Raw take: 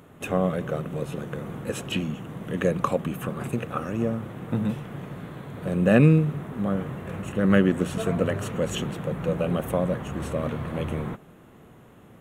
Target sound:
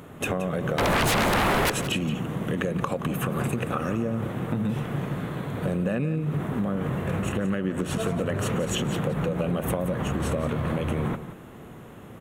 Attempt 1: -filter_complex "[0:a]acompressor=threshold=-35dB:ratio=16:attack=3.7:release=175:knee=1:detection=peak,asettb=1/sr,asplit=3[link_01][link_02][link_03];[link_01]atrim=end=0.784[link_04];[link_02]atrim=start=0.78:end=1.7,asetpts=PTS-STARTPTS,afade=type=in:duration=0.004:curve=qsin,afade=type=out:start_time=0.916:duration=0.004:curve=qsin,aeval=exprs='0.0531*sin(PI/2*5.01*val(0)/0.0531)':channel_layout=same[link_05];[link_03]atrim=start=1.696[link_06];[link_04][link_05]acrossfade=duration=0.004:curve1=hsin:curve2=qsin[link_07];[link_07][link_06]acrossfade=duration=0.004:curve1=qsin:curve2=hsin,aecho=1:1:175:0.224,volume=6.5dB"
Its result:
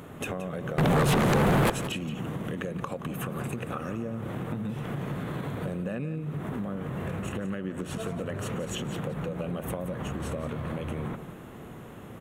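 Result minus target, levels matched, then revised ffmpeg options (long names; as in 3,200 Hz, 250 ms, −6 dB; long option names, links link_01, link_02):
downward compressor: peak gain reduction +6.5 dB
-filter_complex "[0:a]acompressor=threshold=-28dB:ratio=16:attack=3.7:release=175:knee=1:detection=peak,asettb=1/sr,asplit=3[link_01][link_02][link_03];[link_01]atrim=end=0.784[link_04];[link_02]atrim=start=0.78:end=1.7,asetpts=PTS-STARTPTS,afade=type=in:duration=0.004:curve=qsin,afade=type=out:start_time=0.916:duration=0.004:curve=qsin,aeval=exprs='0.0531*sin(PI/2*5.01*val(0)/0.0531)':channel_layout=same[link_05];[link_03]atrim=start=1.696[link_06];[link_04][link_05]acrossfade=duration=0.004:curve1=hsin:curve2=qsin[link_07];[link_07][link_06]acrossfade=duration=0.004:curve1=qsin:curve2=hsin,aecho=1:1:175:0.224,volume=6.5dB"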